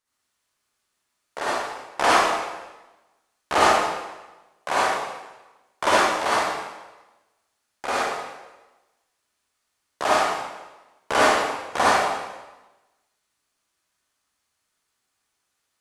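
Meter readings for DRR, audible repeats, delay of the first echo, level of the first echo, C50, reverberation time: -8.5 dB, no echo, no echo, no echo, -7.0 dB, 1.1 s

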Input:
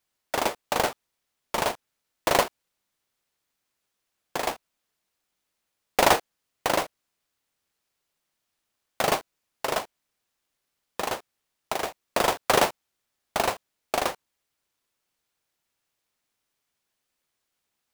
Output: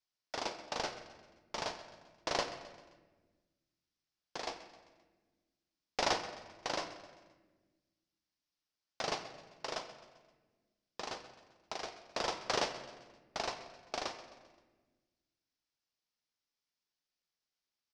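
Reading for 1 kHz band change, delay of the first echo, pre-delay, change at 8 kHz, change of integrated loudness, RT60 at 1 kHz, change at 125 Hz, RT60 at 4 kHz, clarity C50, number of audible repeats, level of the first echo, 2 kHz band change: -13.5 dB, 131 ms, 3 ms, -13.0 dB, -12.5 dB, 1.2 s, -13.5 dB, 1.0 s, 9.5 dB, 4, -15.5 dB, -12.5 dB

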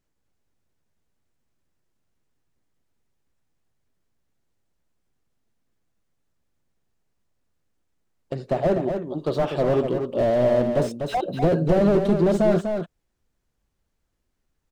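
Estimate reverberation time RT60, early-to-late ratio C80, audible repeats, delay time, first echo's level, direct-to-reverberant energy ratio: no reverb, no reverb, 1, 246 ms, -6.5 dB, no reverb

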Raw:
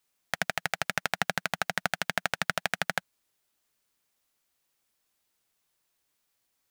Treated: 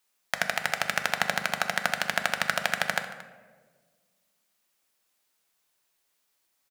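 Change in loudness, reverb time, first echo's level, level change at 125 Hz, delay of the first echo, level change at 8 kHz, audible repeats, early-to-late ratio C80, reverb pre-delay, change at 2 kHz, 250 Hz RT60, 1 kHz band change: +3.0 dB, 1.5 s, -18.5 dB, -1.5 dB, 227 ms, +3.0 dB, 1, 11.0 dB, 3 ms, +3.5 dB, 2.1 s, +3.0 dB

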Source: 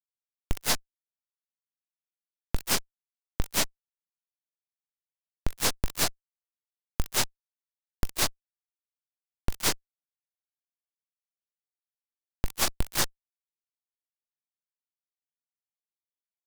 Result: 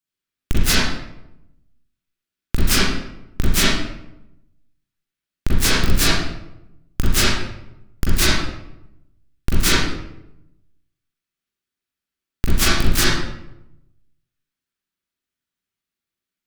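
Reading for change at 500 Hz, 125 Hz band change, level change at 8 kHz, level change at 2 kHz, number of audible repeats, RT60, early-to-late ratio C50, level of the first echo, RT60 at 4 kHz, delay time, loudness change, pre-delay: +10.5 dB, +15.5 dB, +7.5 dB, +13.5 dB, no echo, 0.85 s, -2.0 dB, no echo, 0.55 s, no echo, +10.0 dB, 35 ms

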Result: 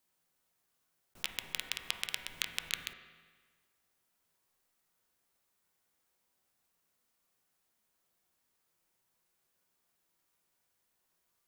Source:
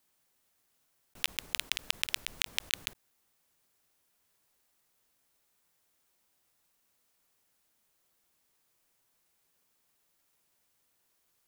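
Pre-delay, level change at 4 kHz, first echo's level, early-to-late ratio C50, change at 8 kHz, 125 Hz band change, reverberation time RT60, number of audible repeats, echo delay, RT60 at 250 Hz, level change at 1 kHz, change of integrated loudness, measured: 5 ms, -5.0 dB, no echo, 6.0 dB, -5.0 dB, -2.5 dB, 1.5 s, no echo, no echo, 1.5 s, -2.5 dB, -4.5 dB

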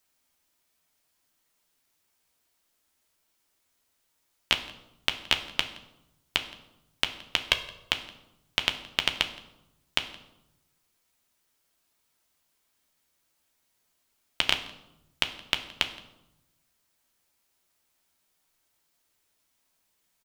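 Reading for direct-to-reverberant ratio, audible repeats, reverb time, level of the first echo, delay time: 5.0 dB, 1, 0.90 s, -22.5 dB, 170 ms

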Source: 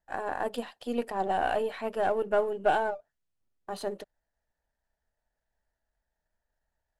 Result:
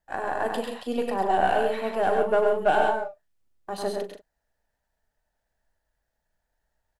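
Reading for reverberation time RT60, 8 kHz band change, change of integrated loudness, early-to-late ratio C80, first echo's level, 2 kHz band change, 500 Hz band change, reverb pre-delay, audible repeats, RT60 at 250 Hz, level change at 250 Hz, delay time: no reverb, +5.0 dB, +5.0 dB, no reverb, -13.0 dB, +5.0 dB, +5.0 dB, no reverb, 4, no reverb, +4.5 dB, 40 ms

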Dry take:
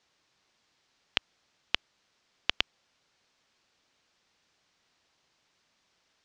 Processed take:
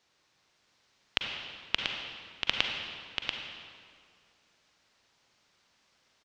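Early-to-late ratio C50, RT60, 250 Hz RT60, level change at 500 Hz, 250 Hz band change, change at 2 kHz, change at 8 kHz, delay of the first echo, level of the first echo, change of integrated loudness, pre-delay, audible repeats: 0.0 dB, 2.0 s, 2.1 s, +3.0 dB, +3.5 dB, +3.0 dB, +3.0 dB, 687 ms, -5.5 dB, 0.0 dB, 38 ms, 1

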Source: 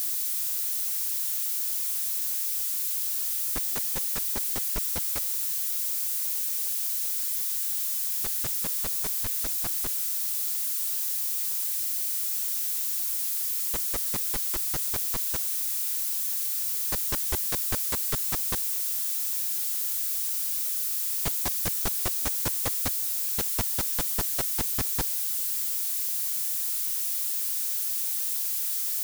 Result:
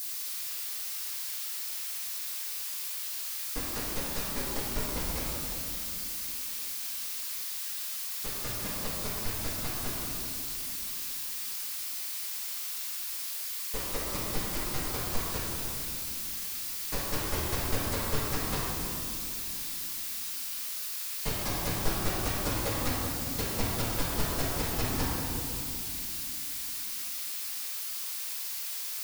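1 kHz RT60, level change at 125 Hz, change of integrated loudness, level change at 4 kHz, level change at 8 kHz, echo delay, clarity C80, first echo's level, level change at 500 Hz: 2.5 s, +4.5 dB, -6.5 dB, -0.5 dB, -6.5 dB, no echo, -0.5 dB, no echo, +4.5 dB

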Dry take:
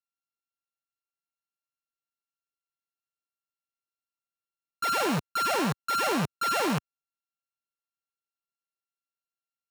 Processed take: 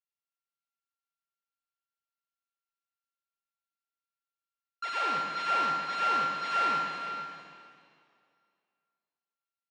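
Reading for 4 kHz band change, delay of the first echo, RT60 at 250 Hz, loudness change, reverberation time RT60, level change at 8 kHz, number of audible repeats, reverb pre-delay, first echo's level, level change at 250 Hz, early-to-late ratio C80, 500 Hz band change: -4.5 dB, 460 ms, 2.3 s, -2.0 dB, 2.3 s, -14.5 dB, 1, 6 ms, -12.0 dB, -15.0 dB, 2.0 dB, -9.5 dB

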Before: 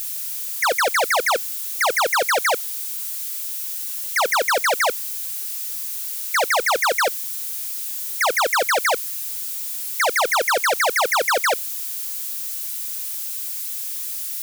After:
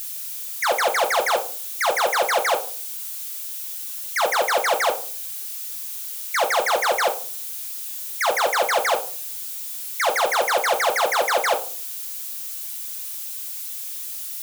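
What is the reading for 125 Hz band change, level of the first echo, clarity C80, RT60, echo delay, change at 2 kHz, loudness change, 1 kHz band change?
no reading, no echo, 18.0 dB, 0.45 s, no echo, -3.0 dB, -2.0 dB, -0.5 dB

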